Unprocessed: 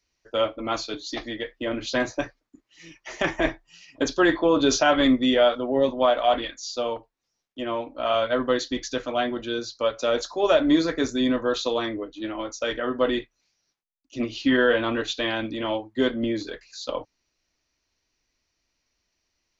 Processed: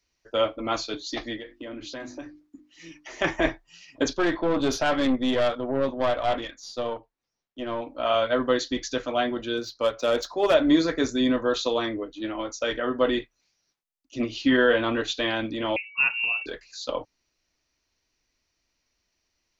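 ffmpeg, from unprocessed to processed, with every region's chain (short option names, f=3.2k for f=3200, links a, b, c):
-filter_complex "[0:a]asettb=1/sr,asplit=3[a][b][c];[a]atrim=end=1.374[d];[b]atrim=start=1.37:end=3.22,asetpts=PTS-STARTPTS,afade=t=in:d=0.004:c=qsin,afade=t=out:st=1.846:d=0.004:c=qsin,equalizer=f=290:t=o:w=0.37:g=9,bandreject=f=50:t=h:w=6,bandreject=f=100:t=h:w=6,bandreject=f=150:t=h:w=6,bandreject=f=200:t=h:w=6,bandreject=f=250:t=h:w=6,bandreject=f=300:t=h:w=6,bandreject=f=350:t=h:w=6,acompressor=threshold=-38dB:ratio=3:attack=3.2:release=140:knee=1:detection=peak[e];[c]atrim=start=3.216[f];[d][e]acrossfade=d=0.004:c1=hsin:c2=qsin[g];[g][f]acrossfade=d=0.004:c1=qsin:c2=hsin,asettb=1/sr,asplit=3[h][i][j];[h]atrim=end=4.134[k];[i]atrim=start=4.13:end=7.82,asetpts=PTS-STARTPTS,afade=t=in:d=0.004:c=qsin,afade=t=out:st=3.686:d=0.004:c=qsin,lowpass=f=3.5k:p=1,aeval=exprs='(tanh(7.94*val(0)+0.5)-tanh(0.5))/7.94':c=same[l];[j]atrim=start=7.816[m];[k][l]acrossfade=d=0.004:c1=hsin:c2=qsin[n];[n][m]acrossfade=d=0.004:c1=qsin:c2=hsin,asettb=1/sr,asplit=3[o][p][q];[o]atrim=end=9.574[r];[p]atrim=start=9.57:end=10.54,asetpts=PTS-STARTPTS,afade=t=in:d=0.004:c=qsin,afade=t=out:st=0.966:d=0.004:c=qsin,asoftclip=type=hard:threshold=-15dB,adynamicsmooth=sensitivity=5.5:basefreq=5.1k[s];[q]atrim=start=10.536[t];[r][s]acrossfade=d=0.004:c1=hsin:c2=qsin[u];[u][t]acrossfade=d=0.004:c1=qsin:c2=hsin,asettb=1/sr,asplit=3[v][w][x];[v]atrim=end=15.764[y];[w]atrim=start=15.76:end=16.46,asetpts=PTS-STARTPTS,afade=t=in:d=0.004:c=qsin,afade=t=out:st=0.696:d=0.004:c=qsin,lowshelf=f=87:g=-11.5,aeval=exprs='val(0)+0.00562*sin(2*PI*730*n/s)':c=same,lowpass=f=2.6k:t=q:w=0.5098,lowpass=f=2.6k:t=q:w=0.6013,lowpass=f=2.6k:t=q:w=0.9,lowpass=f=2.6k:t=q:w=2.563,afreqshift=-3000[z];[x]atrim=start=16.456[aa];[y][z]acrossfade=d=0.004:c1=hsin:c2=qsin[ab];[ab][aa]acrossfade=d=0.004:c1=qsin:c2=hsin"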